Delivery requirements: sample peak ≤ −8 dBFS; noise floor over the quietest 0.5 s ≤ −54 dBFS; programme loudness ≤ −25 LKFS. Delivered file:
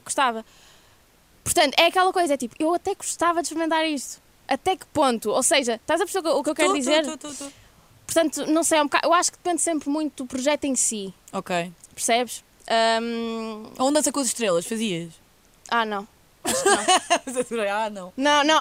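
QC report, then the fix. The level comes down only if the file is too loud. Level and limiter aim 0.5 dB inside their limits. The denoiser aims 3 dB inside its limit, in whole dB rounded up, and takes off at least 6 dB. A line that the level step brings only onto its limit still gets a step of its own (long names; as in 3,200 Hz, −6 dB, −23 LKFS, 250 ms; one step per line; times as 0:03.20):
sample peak −3.5 dBFS: out of spec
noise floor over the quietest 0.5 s −57 dBFS: in spec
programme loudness −22.5 LKFS: out of spec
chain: level −3 dB
brickwall limiter −8.5 dBFS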